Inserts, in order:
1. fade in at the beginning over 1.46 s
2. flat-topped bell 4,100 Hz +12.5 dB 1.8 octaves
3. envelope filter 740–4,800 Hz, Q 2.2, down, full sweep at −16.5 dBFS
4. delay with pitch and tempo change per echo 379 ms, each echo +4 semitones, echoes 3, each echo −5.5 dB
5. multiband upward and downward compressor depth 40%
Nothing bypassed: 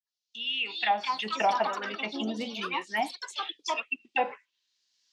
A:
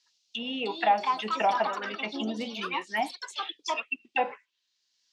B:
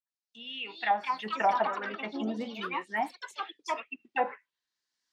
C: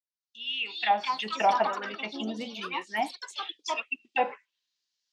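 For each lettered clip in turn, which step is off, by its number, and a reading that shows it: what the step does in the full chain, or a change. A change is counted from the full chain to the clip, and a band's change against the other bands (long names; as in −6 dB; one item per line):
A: 1, 4 kHz band −4.0 dB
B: 2, 4 kHz band −7.5 dB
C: 5, change in crest factor +2.0 dB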